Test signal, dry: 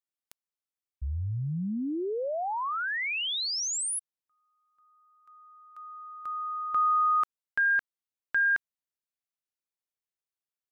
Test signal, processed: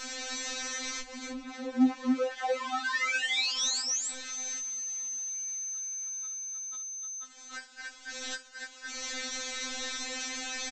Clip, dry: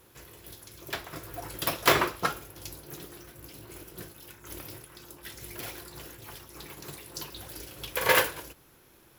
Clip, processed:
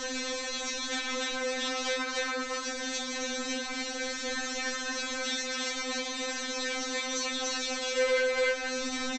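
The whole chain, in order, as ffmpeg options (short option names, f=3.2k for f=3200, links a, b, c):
-filter_complex "[0:a]aeval=exprs='val(0)+0.5*0.0251*sgn(val(0))':c=same,equalizer=f=120:t=o:w=1.4:g=-3.5,asplit=2[a][b];[b]adelay=16,volume=-2dB[c];[a][c]amix=inputs=2:normalize=0,aecho=1:1:46.65|288.6:0.355|0.891,acompressor=threshold=-29dB:ratio=8:attack=58:release=330:knee=6:detection=rms,aresample=16000,asoftclip=type=tanh:threshold=-34dB,aresample=44100,afftfilt=real='re*3.46*eq(mod(b,12),0)':imag='im*3.46*eq(mod(b,12),0)':win_size=2048:overlap=0.75,volume=9dB"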